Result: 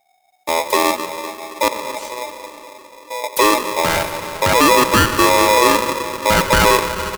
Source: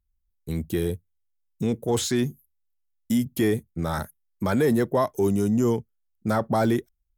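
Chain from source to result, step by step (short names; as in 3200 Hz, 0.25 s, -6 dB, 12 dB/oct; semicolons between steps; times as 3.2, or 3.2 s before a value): 1.68–3.24 passive tone stack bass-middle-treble 10-0-1; in parallel at -1 dB: compressor, threshold -30 dBFS, peak gain reduction 12 dB; on the sum: companded quantiser 8-bit; frequency-shifting echo 91 ms, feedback 37%, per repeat +65 Hz, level -16 dB; reverb RT60 4.3 s, pre-delay 83 ms, DRR 8 dB; polarity switched at an audio rate 740 Hz; gain +6.5 dB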